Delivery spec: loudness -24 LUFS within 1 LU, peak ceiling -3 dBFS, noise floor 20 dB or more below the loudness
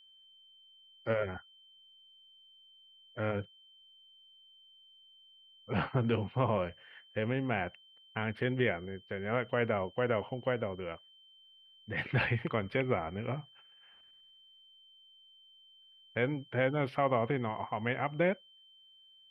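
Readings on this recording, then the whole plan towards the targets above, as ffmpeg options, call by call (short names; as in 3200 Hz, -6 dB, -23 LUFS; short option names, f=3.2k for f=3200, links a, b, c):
steady tone 3100 Hz; tone level -58 dBFS; loudness -34.0 LUFS; peak -15.5 dBFS; loudness target -24.0 LUFS
-> -af "bandreject=f=3.1k:w=30"
-af "volume=10dB"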